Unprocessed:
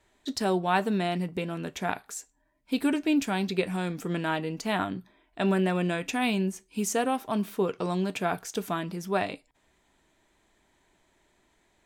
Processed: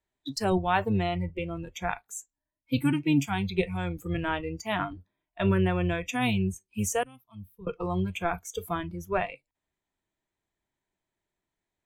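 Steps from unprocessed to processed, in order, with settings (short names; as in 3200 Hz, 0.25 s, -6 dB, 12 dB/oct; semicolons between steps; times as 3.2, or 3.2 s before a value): octaver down 1 oct, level -2 dB; spectral noise reduction 20 dB; 7.03–7.67 passive tone stack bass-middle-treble 6-0-2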